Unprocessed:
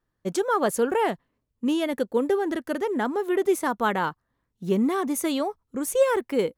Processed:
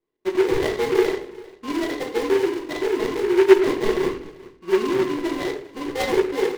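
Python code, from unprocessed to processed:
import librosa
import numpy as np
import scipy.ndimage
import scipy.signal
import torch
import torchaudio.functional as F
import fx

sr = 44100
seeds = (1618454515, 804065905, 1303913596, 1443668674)

p1 = scipy.signal.sosfilt(scipy.signal.butter(2, 290.0, 'highpass', fs=sr, output='sos'), x)
p2 = fx.high_shelf(p1, sr, hz=6200.0, db=-10.5)
p3 = fx.hum_notches(p2, sr, base_hz=60, count=9)
p4 = fx.level_steps(p3, sr, step_db=19)
p5 = p3 + (p4 * librosa.db_to_amplitude(-1.0))
p6 = fx.sample_hold(p5, sr, seeds[0], rate_hz=1300.0, jitter_pct=0)
p7 = fx.small_body(p6, sr, hz=(380.0, 1100.0, 2000.0, 2800.0), ring_ms=35, db=17)
p8 = p7 + fx.echo_single(p7, sr, ms=395, db=-20.5, dry=0)
p9 = fx.room_shoebox(p8, sr, seeds[1], volume_m3=59.0, walls='mixed', distance_m=0.66)
p10 = fx.noise_mod_delay(p9, sr, seeds[2], noise_hz=1500.0, depth_ms=0.061)
y = p10 * librosa.db_to_amplitude(-11.0)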